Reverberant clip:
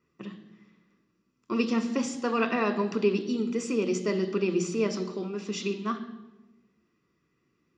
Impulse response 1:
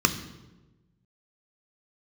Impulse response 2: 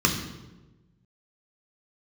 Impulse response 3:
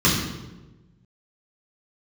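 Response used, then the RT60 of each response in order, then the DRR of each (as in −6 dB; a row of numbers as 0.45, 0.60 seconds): 1; 1.2, 1.2, 1.2 seconds; 8.5, 2.0, −6.0 decibels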